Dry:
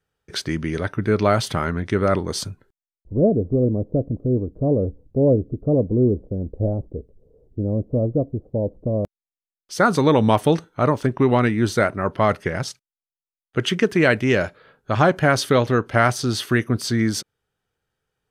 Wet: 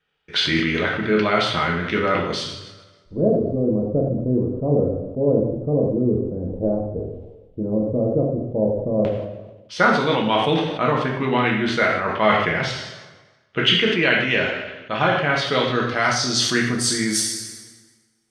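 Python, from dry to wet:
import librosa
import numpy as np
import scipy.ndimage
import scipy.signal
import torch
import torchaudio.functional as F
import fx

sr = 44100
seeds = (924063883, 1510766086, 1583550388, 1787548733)

y = fx.tilt_eq(x, sr, slope=1.5)
y = fx.rider(y, sr, range_db=4, speed_s=0.5)
y = fx.filter_sweep_lowpass(y, sr, from_hz=3000.0, to_hz=10000.0, start_s=15.4, end_s=17.06, q=2.3)
y = fx.rev_double_slope(y, sr, seeds[0], early_s=0.74, late_s=2.1, knee_db=-23, drr_db=-1.5)
y = fx.sustainer(y, sr, db_per_s=50.0)
y = y * 10.0 ** (-3.0 / 20.0)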